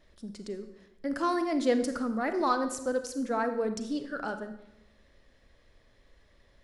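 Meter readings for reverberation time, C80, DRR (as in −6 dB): 0.90 s, 12.0 dB, 8.5 dB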